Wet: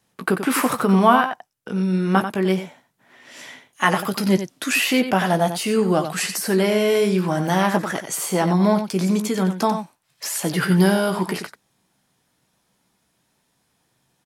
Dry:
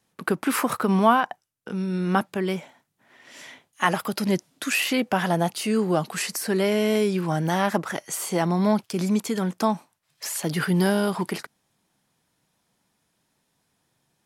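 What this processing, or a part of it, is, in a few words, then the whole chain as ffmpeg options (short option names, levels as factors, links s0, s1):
slapback doubling: -filter_complex "[0:a]asplit=3[s0][s1][s2];[s1]adelay=16,volume=0.376[s3];[s2]adelay=91,volume=0.355[s4];[s0][s3][s4]amix=inputs=3:normalize=0,volume=1.41"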